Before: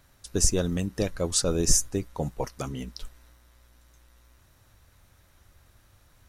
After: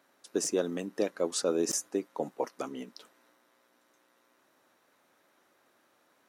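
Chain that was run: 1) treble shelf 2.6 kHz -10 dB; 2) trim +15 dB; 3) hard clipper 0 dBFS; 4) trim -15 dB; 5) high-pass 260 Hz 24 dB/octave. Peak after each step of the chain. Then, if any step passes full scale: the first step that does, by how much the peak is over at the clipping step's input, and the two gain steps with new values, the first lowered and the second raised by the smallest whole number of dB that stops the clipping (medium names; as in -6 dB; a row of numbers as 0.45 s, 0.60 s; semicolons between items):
-9.5 dBFS, +5.5 dBFS, 0.0 dBFS, -15.0 dBFS, -15.5 dBFS; step 2, 5.5 dB; step 2 +9 dB, step 4 -9 dB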